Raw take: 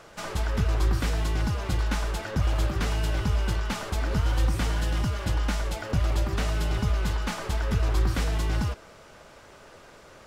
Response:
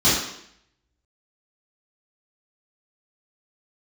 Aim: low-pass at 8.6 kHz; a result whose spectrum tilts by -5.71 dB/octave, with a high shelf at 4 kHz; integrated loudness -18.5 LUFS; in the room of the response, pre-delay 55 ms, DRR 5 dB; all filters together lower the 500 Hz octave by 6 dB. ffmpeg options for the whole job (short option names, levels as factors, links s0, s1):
-filter_complex "[0:a]lowpass=8600,equalizer=f=500:t=o:g=-8,highshelf=f=4000:g=-5,asplit=2[s0][s1];[1:a]atrim=start_sample=2205,adelay=55[s2];[s1][s2]afir=irnorm=-1:irlink=0,volume=0.0596[s3];[s0][s3]amix=inputs=2:normalize=0,volume=2.66"